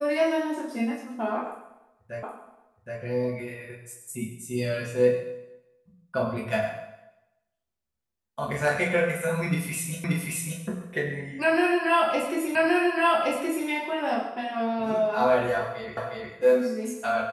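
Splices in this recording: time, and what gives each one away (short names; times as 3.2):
2.23 repeat of the last 0.77 s
10.04 repeat of the last 0.58 s
12.55 repeat of the last 1.12 s
15.97 repeat of the last 0.36 s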